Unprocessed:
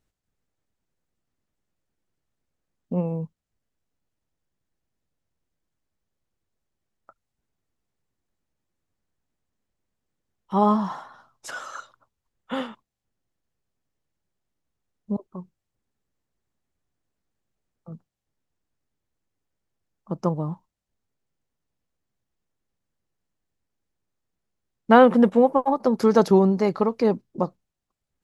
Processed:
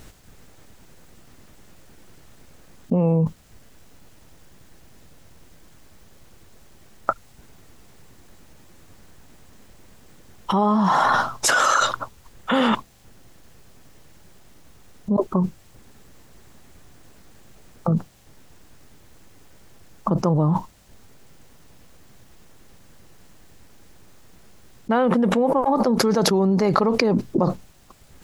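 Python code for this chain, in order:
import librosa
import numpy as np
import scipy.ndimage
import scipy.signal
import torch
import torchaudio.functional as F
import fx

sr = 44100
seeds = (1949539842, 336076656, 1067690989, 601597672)

y = fx.env_flatten(x, sr, amount_pct=100)
y = y * librosa.db_to_amplitude(-7.5)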